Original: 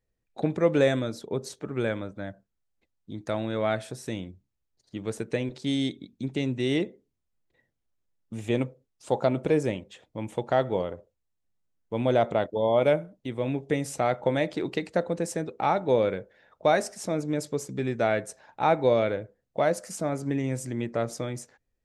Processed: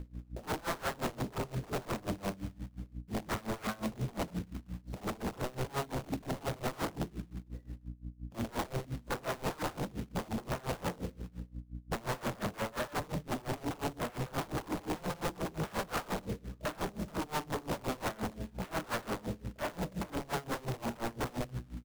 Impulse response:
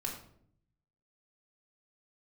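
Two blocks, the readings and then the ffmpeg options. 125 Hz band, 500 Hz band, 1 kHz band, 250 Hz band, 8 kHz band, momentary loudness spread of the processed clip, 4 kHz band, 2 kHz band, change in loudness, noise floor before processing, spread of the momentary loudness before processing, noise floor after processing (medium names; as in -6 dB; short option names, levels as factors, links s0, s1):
-6.0 dB, -14.0 dB, -7.5 dB, -8.5 dB, -5.0 dB, 8 LU, -5.0 dB, -6.0 dB, -10.5 dB, -80 dBFS, 13 LU, -58 dBFS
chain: -filter_complex "[1:a]atrim=start_sample=2205,asetrate=61740,aresample=44100[s0];[0:a][s0]afir=irnorm=-1:irlink=0,acompressor=mode=upward:threshold=0.0126:ratio=2.5,volume=11.2,asoftclip=hard,volume=0.0891,bandpass=f=190:t=q:w=1.2:csg=0,aecho=1:1:61|122:0.119|0.0178,acrusher=bits=2:mode=log:mix=0:aa=0.000001,alimiter=level_in=1.88:limit=0.0631:level=0:latency=1:release=70,volume=0.531,aeval=exprs='val(0)+0.00251*(sin(2*PI*60*n/s)+sin(2*PI*2*60*n/s)/2+sin(2*PI*3*60*n/s)/3+sin(2*PI*4*60*n/s)/4+sin(2*PI*5*60*n/s)/5)':c=same,aeval=exprs='0.0376*sin(PI/2*3.55*val(0)/0.0376)':c=same,aeval=exprs='val(0)*pow(10,-23*(0.5-0.5*cos(2*PI*5.7*n/s))/20)':c=same"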